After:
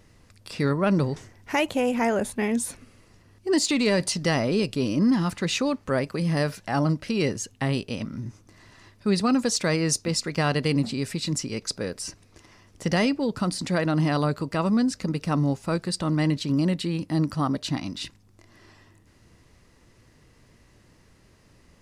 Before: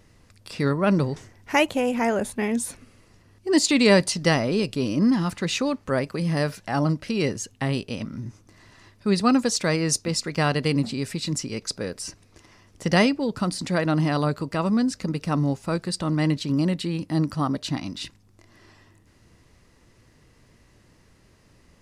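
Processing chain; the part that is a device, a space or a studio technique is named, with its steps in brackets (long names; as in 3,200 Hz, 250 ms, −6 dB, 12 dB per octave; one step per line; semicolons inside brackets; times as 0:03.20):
soft clipper into limiter (soft clipping −7 dBFS, distortion −26 dB; brickwall limiter −14 dBFS, peak gain reduction 5.5 dB)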